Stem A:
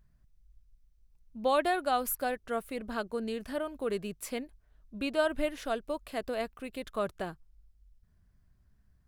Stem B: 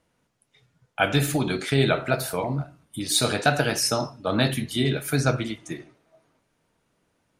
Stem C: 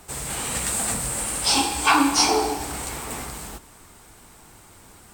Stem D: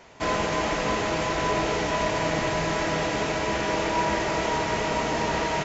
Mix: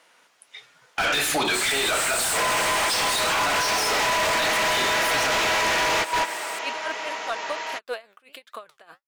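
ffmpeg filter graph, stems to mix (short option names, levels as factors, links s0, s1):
-filter_complex "[0:a]flanger=delay=2.9:depth=7.6:regen=69:speed=1.3:shape=triangular,aeval=exprs='val(0)*pow(10,-28*(0.5-0.5*cos(2*PI*4.9*n/s))/20)':c=same,adelay=1600,volume=0.531[s0];[1:a]dynaudnorm=f=540:g=3:m=2.24,volume=0.501,asplit=2[s1][s2];[2:a]adelay=1450,volume=0.473[s3];[3:a]adelay=2150,volume=1.33[s4];[s2]apad=whole_len=343737[s5];[s4][s5]sidechaingate=range=0.0398:threshold=0.00112:ratio=16:detection=peak[s6];[s0][s1][s3][s6]amix=inputs=4:normalize=0,highpass=f=960:p=1,asplit=2[s7][s8];[s8]highpass=f=720:p=1,volume=39.8,asoftclip=type=tanh:threshold=0.335[s9];[s7][s9]amix=inputs=2:normalize=0,lowpass=f=4600:p=1,volume=0.501,alimiter=limit=0.119:level=0:latency=1:release=92"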